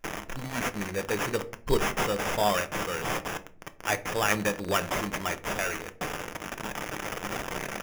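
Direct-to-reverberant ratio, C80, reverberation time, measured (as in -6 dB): 9.0 dB, 22.0 dB, 0.45 s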